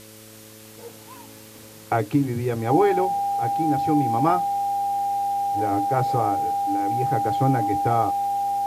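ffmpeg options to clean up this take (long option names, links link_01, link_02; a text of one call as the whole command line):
ffmpeg -i in.wav -af "bandreject=frequency=108.8:width_type=h:width=4,bandreject=frequency=217.6:width_type=h:width=4,bandreject=frequency=326.4:width_type=h:width=4,bandreject=frequency=435.2:width_type=h:width=4,bandreject=frequency=544:width_type=h:width=4,bandreject=frequency=800:width=30,afwtdn=0.005" out.wav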